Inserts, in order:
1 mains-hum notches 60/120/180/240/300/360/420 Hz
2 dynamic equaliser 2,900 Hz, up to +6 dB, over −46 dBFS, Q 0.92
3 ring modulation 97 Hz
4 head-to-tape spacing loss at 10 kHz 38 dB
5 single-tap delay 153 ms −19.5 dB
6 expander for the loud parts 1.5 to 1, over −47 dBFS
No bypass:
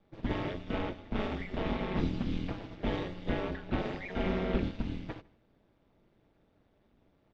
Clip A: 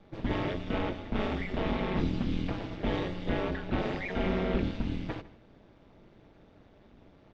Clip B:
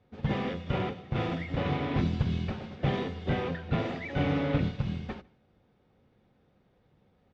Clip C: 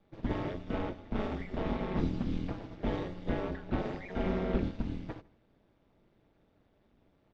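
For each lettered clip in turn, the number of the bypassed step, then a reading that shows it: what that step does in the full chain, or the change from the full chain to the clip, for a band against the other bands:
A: 6, change in integrated loudness +2.5 LU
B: 3, 125 Hz band +4.0 dB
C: 2, 4 kHz band −5.0 dB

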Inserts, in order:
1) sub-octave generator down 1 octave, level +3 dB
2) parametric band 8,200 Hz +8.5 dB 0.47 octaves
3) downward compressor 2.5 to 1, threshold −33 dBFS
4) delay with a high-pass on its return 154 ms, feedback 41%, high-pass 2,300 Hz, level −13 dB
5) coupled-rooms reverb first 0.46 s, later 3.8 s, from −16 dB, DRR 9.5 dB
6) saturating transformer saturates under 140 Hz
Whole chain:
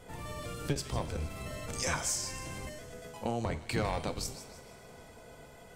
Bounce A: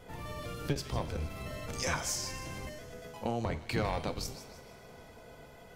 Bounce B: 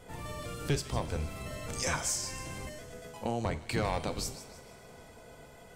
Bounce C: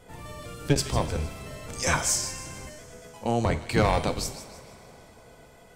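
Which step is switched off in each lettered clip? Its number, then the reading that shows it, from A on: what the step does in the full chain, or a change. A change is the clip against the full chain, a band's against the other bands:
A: 2, 8 kHz band −3.0 dB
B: 6, change in integrated loudness +1.0 LU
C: 3, change in integrated loudness +9.0 LU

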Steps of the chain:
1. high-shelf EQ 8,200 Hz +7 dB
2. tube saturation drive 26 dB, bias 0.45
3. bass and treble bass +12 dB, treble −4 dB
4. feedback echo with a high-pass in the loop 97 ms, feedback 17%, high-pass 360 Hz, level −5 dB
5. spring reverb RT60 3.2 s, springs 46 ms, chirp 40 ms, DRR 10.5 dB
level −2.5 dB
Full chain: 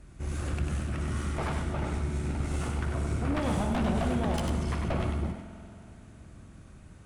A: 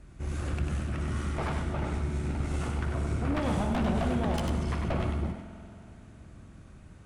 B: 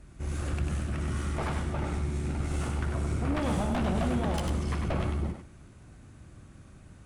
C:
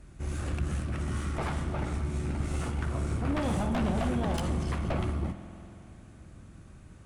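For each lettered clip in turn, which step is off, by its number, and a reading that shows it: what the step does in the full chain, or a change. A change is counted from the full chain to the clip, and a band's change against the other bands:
1, 8 kHz band −3.0 dB
5, change in momentary loudness spread −17 LU
4, echo-to-direct ratio −4.0 dB to −10.5 dB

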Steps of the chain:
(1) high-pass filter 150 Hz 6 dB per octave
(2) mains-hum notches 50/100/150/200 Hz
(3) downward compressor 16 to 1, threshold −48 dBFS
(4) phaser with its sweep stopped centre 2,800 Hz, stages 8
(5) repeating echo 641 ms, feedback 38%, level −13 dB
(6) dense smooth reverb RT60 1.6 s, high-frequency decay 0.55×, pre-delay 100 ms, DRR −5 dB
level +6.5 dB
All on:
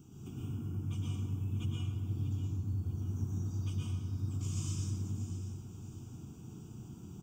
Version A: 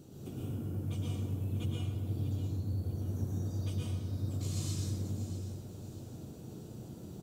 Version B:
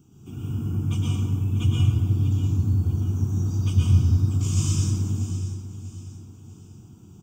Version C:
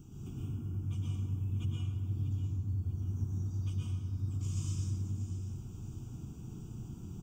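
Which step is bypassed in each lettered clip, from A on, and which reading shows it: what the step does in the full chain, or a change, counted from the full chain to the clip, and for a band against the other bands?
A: 4, 500 Hz band +6.0 dB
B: 3, average gain reduction 10.5 dB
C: 1, change in momentary loudness spread −2 LU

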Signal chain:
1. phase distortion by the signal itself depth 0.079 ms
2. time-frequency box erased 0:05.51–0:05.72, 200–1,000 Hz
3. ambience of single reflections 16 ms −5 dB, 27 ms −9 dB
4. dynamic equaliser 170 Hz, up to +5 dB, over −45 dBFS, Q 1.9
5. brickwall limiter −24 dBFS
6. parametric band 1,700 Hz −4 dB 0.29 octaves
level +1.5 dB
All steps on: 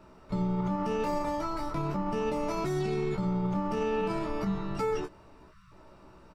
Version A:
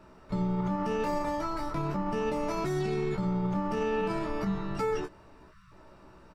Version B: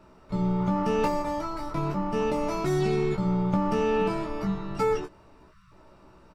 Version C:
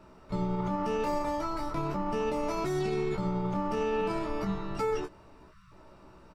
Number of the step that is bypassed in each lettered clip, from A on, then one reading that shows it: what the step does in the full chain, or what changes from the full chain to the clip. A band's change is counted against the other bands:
6, 2 kHz band +2.0 dB
5, average gain reduction 2.5 dB
4, 125 Hz band −3.0 dB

